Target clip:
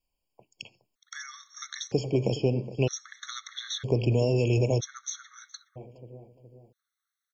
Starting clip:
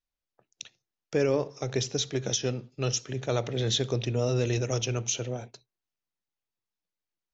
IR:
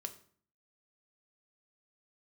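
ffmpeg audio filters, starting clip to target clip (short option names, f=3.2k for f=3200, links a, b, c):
-filter_complex "[0:a]acrossover=split=810|2200[a][b][c];[a]acompressor=threshold=-30dB:ratio=4[d];[b]acompressor=threshold=-55dB:ratio=4[e];[c]acompressor=threshold=-45dB:ratio=4[f];[d][e][f]amix=inputs=3:normalize=0,asplit=2[g][h];[h]adelay=417,lowpass=f=1.5k:p=1,volume=-14dB,asplit=2[i][j];[j]adelay=417,lowpass=f=1.5k:p=1,volume=0.48,asplit=2[k][l];[l]adelay=417,lowpass=f=1.5k:p=1,volume=0.48,asplit=2[m][n];[n]adelay=417,lowpass=f=1.5k:p=1,volume=0.48,asplit=2[o][p];[p]adelay=417,lowpass=f=1.5k:p=1,volume=0.48[q];[g][i][k][m][o][q]amix=inputs=6:normalize=0,afftfilt=real='re*gt(sin(2*PI*0.52*pts/sr)*(1-2*mod(floor(b*sr/1024/1100),2)),0)':imag='im*gt(sin(2*PI*0.52*pts/sr)*(1-2*mod(floor(b*sr/1024/1100),2)),0)':win_size=1024:overlap=0.75,volume=9dB"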